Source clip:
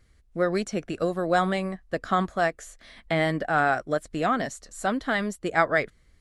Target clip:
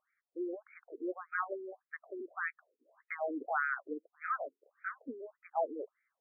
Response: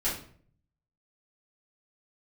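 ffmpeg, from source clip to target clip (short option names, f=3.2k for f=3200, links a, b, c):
-af "highpass=f=140:w=0.5412,highpass=f=140:w=1.3066,afftfilt=real='re*between(b*sr/1024,320*pow(1800/320,0.5+0.5*sin(2*PI*1.7*pts/sr))/1.41,320*pow(1800/320,0.5+0.5*sin(2*PI*1.7*pts/sr))*1.41)':imag='im*between(b*sr/1024,320*pow(1800/320,0.5+0.5*sin(2*PI*1.7*pts/sr))/1.41,320*pow(1800/320,0.5+0.5*sin(2*PI*1.7*pts/sr))*1.41)':win_size=1024:overlap=0.75,volume=-7dB"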